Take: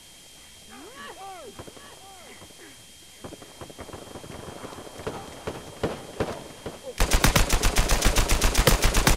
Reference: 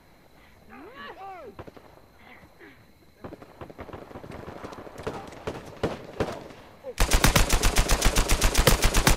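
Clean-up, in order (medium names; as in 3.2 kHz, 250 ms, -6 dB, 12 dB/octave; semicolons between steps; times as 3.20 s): band-stop 3.2 kHz, Q 30; noise print and reduce 6 dB; inverse comb 824 ms -9 dB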